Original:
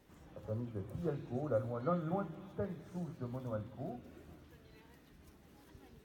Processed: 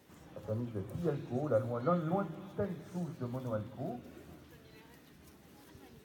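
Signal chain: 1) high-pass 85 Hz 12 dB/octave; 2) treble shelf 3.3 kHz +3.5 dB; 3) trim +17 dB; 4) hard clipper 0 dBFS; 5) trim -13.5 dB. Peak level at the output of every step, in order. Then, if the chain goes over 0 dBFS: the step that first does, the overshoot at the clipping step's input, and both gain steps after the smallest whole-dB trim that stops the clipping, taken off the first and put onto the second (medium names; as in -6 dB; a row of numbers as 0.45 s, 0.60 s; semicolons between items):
-22.0 dBFS, -22.0 dBFS, -5.0 dBFS, -5.0 dBFS, -18.5 dBFS; nothing clips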